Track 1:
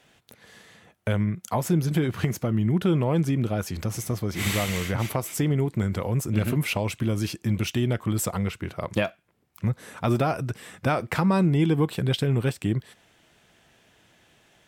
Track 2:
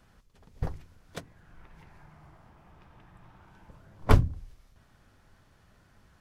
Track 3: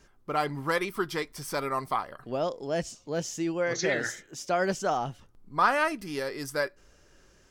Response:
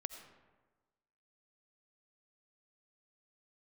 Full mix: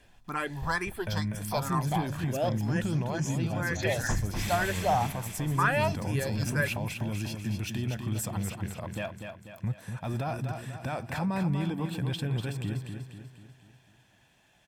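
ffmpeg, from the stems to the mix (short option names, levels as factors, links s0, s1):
-filter_complex "[0:a]alimiter=limit=0.133:level=0:latency=1:release=10,volume=0.447,asplit=2[s0][s1];[s1]volume=0.473[s2];[1:a]asoftclip=type=tanh:threshold=0.112,volume=0.422,asplit=2[s3][s4];[s4]volume=0.473[s5];[2:a]asplit=2[s6][s7];[s7]afreqshift=2.1[s8];[s6][s8]amix=inputs=2:normalize=1,volume=1.12[s9];[s2][s5]amix=inputs=2:normalize=0,aecho=0:1:245|490|735|980|1225|1470|1715:1|0.48|0.23|0.111|0.0531|0.0255|0.0122[s10];[s0][s3][s9][s10]amix=inputs=4:normalize=0,aecho=1:1:1.2:0.41"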